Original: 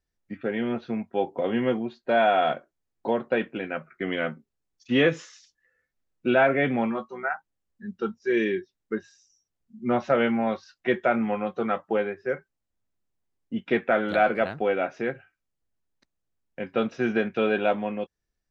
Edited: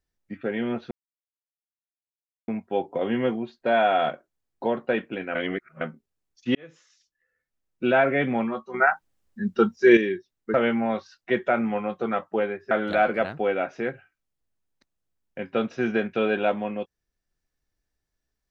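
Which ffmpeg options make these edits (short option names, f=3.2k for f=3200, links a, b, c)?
-filter_complex "[0:a]asplit=9[a][b][c][d][e][f][g][h][i];[a]atrim=end=0.91,asetpts=PTS-STARTPTS,afade=t=out:st=0.906:d=0.004:c=hsin,apad=pad_dur=1.57[j];[b]atrim=start=0.91:end=3.782,asetpts=PTS-STARTPTS,afade=t=in:d=0.004:c=hsin[k];[c]atrim=start=3.778:end=4.242,asetpts=PTS-STARTPTS,areverse[l];[d]atrim=start=4.238:end=4.98,asetpts=PTS-STARTPTS,afade=t=out:st=0.738:d=0.004:c=hsin[m];[e]atrim=start=4.98:end=7.172,asetpts=PTS-STARTPTS,afade=t=in:d=1.39[n];[f]atrim=start=7.168:end=8.402,asetpts=PTS-STARTPTS,volume=9dB[o];[g]atrim=start=8.398:end=8.972[p];[h]atrim=start=10.108:end=12.282[q];[i]atrim=start=13.918[r];[j][k]concat=n=2:v=0:a=1[s];[s][l]acrossfade=d=0.004:c1=hsin:c2=hsin[t];[m][n]concat=n=2:v=0:a=1[u];[t][u]acrossfade=d=0.004:c1=hsin:c2=hsin[v];[v][o]acrossfade=d=0.004:c1=hsin:c2=hsin[w];[w][p]acrossfade=d=0.004:c1=hsin:c2=hsin[x];[x][q]acrossfade=d=0.004:c1=hsin:c2=hsin[y];[y][r]acrossfade=d=0.004:c1=hsin:c2=hsin"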